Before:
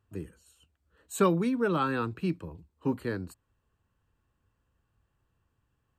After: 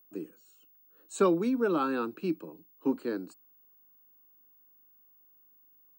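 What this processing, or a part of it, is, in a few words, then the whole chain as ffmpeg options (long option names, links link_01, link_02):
old television with a line whistle: -af "highpass=frequency=220:width=0.5412,highpass=frequency=220:width=1.3066,equalizer=frequency=310:width_type=q:width=4:gain=5,equalizer=frequency=1000:width_type=q:width=4:gain=-3,equalizer=frequency=1900:width_type=q:width=4:gain=-10,equalizer=frequency=3200:width_type=q:width=4:gain=-6,lowpass=frequency=7800:width=0.5412,lowpass=frequency=7800:width=1.3066,aeval=exprs='val(0)+0.00112*sin(2*PI*15625*n/s)':channel_layout=same"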